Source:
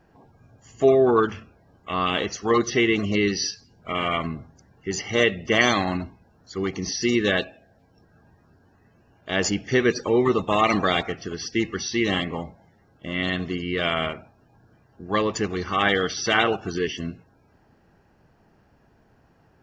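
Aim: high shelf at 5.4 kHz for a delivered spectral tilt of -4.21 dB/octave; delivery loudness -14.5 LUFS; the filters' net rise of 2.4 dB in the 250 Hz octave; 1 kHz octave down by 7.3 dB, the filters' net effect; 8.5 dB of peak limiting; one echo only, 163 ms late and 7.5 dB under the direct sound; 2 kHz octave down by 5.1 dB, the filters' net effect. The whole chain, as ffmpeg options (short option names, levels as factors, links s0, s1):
-af "equalizer=f=250:t=o:g=4,equalizer=f=1000:t=o:g=-9,equalizer=f=2000:t=o:g=-4.5,highshelf=f=5400:g=5,alimiter=limit=0.178:level=0:latency=1,aecho=1:1:163:0.422,volume=3.76"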